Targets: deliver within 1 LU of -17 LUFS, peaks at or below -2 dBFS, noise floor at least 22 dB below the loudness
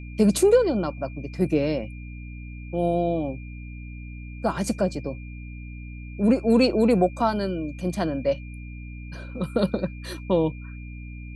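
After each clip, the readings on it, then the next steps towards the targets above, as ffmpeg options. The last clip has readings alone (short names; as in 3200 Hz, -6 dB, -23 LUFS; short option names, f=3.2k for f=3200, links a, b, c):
hum 60 Hz; harmonics up to 300 Hz; hum level -35 dBFS; steady tone 2400 Hz; tone level -47 dBFS; loudness -24.0 LUFS; peak -7.5 dBFS; loudness target -17.0 LUFS
-> -af "bandreject=f=60:t=h:w=4,bandreject=f=120:t=h:w=4,bandreject=f=180:t=h:w=4,bandreject=f=240:t=h:w=4,bandreject=f=300:t=h:w=4"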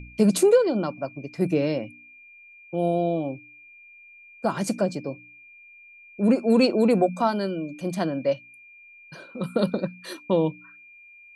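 hum none; steady tone 2400 Hz; tone level -47 dBFS
-> -af "bandreject=f=2.4k:w=30"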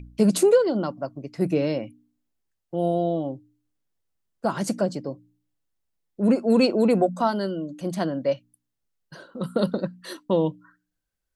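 steady tone none; loudness -24.5 LUFS; peak -7.5 dBFS; loudness target -17.0 LUFS
-> -af "volume=7.5dB,alimiter=limit=-2dB:level=0:latency=1"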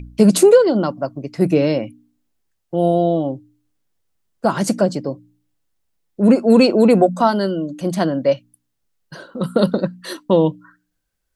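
loudness -17.0 LUFS; peak -2.0 dBFS; noise floor -73 dBFS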